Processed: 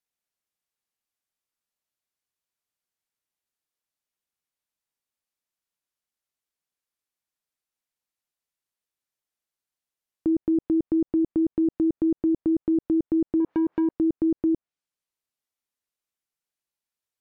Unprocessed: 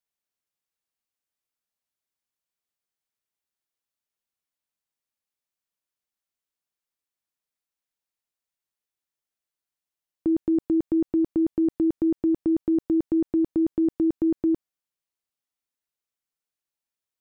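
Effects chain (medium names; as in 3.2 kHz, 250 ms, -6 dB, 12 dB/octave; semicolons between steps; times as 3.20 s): 13.40–13.91 s: overdrive pedal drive 38 dB, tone 1 kHz, clips at -17 dBFS; low-pass that closes with the level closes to 580 Hz, closed at -18.5 dBFS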